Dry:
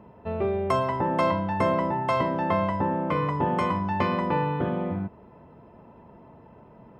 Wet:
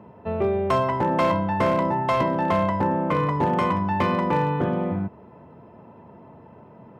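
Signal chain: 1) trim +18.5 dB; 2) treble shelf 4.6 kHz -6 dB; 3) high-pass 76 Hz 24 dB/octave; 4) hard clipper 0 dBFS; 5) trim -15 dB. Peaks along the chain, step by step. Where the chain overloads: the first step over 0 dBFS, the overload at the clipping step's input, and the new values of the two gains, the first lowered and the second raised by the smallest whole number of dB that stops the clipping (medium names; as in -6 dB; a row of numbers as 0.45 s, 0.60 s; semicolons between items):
+8.0 dBFS, +8.0 dBFS, +6.5 dBFS, 0.0 dBFS, -15.0 dBFS; step 1, 6.5 dB; step 1 +11.5 dB, step 5 -8 dB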